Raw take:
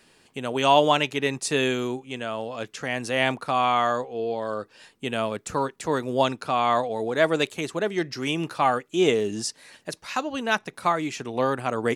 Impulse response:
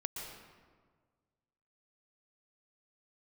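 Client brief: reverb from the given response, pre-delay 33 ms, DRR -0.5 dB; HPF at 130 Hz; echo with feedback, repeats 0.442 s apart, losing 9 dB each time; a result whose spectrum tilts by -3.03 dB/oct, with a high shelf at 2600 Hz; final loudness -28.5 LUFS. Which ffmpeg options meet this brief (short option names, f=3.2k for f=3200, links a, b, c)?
-filter_complex "[0:a]highpass=130,highshelf=f=2.6k:g=-3.5,aecho=1:1:442|884|1326|1768:0.355|0.124|0.0435|0.0152,asplit=2[a][b];[1:a]atrim=start_sample=2205,adelay=33[c];[b][c]afir=irnorm=-1:irlink=0,volume=0dB[d];[a][d]amix=inputs=2:normalize=0,volume=-6.5dB"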